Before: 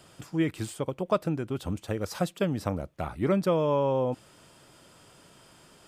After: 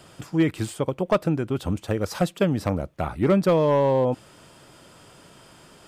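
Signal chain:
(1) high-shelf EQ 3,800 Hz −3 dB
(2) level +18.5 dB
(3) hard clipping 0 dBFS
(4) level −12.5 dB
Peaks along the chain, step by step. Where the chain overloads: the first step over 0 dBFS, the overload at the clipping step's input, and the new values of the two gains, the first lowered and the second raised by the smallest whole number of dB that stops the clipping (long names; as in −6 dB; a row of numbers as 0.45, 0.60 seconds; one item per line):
−12.0, +6.5, 0.0, −12.5 dBFS
step 2, 6.5 dB
step 2 +11.5 dB, step 4 −5.5 dB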